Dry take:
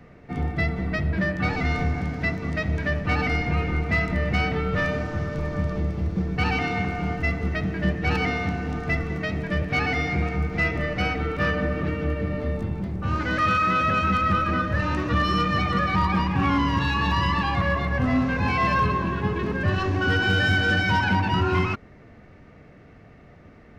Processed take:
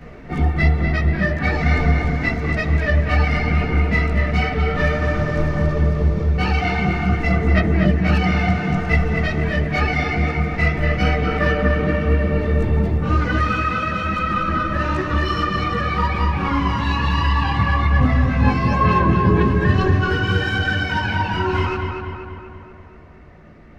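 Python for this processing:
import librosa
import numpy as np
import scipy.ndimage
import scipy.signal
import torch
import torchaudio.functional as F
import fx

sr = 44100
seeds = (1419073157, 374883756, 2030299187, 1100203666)

y = fx.rider(x, sr, range_db=10, speed_s=0.5)
y = fx.chorus_voices(y, sr, voices=6, hz=1.1, base_ms=16, depth_ms=3.0, mix_pct=60)
y = fx.echo_filtered(y, sr, ms=241, feedback_pct=59, hz=3400.0, wet_db=-4.5)
y = y * librosa.db_to_amplitude(5.0)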